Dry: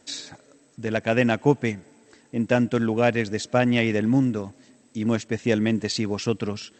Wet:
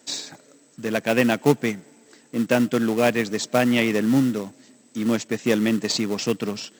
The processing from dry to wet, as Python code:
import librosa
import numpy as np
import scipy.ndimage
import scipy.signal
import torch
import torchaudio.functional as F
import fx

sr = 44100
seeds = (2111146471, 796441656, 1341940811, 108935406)

p1 = fx.sample_hold(x, sr, seeds[0], rate_hz=1600.0, jitter_pct=20)
p2 = x + (p1 * 10.0 ** (-11.5 / 20.0))
p3 = scipy.signal.sosfilt(scipy.signal.butter(4, 140.0, 'highpass', fs=sr, output='sos'), p2)
y = fx.high_shelf(p3, sr, hz=3900.0, db=6.5)